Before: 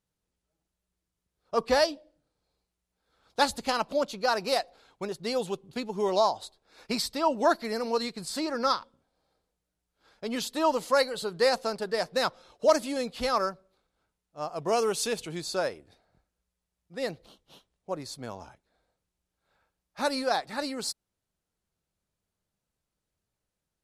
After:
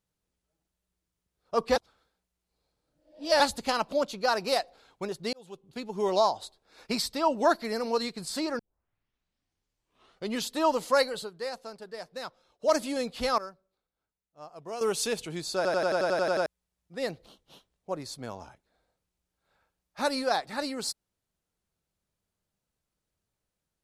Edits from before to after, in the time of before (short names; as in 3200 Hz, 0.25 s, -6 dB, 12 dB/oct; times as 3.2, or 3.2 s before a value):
1.76–3.4 reverse
5.33–6.07 fade in
8.59 tape start 1.81 s
11.15–12.76 dip -11.5 dB, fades 0.16 s
13.38–14.81 gain -11.5 dB
15.56 stutter in place 0.09 s, 10 plays